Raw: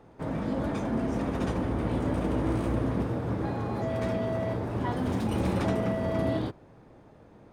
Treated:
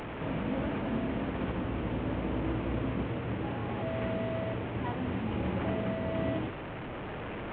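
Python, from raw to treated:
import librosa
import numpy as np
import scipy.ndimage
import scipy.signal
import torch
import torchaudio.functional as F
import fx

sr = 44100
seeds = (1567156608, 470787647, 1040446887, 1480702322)

p1 = fx.delta_mod(x, sr, bps=16000, step_db=-31.0)
p2 = p1 + fx.echo_single(p1, sr, ms=140, db=-21.5, dry=0)
p3 = fx.rider(p2, sr, range_db=3, speed_s=2.0)
y = p3 * 10.0 ** (-4.0 / 20.0)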